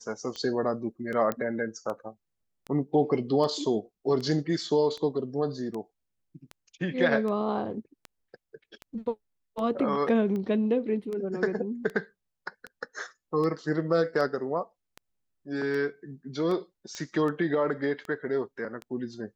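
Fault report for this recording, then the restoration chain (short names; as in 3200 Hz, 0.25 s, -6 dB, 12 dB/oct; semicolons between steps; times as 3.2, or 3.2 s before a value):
tick 78 rpm -24 dBFS
1.32 pop -16 dBFS
16.95 pop -23 dBFS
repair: de-click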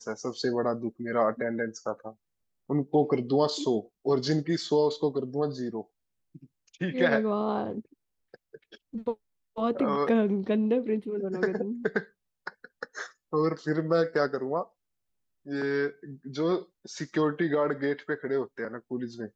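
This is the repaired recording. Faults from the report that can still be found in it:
none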